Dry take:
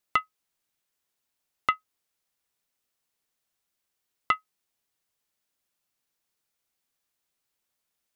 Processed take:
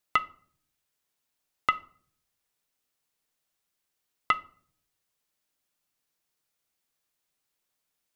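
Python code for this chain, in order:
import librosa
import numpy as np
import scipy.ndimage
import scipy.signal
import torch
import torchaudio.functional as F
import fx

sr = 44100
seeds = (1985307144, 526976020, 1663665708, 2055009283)

y = fx.room_shoebox(x, sr, seeds[0], volume_m3=590.0, walls='furnished', distance_m=0.48)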